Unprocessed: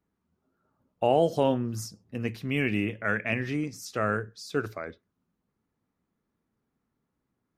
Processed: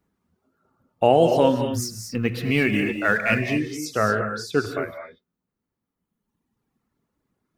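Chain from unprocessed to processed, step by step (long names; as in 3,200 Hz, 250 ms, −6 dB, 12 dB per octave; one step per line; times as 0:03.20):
0:01.73–0:03.55: mu-law and A-law mismatch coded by mu
reverb reduction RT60 1.9 s
reverb whose tail is shaped and stops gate 260 ms rising, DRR 5 dB
level +7 dB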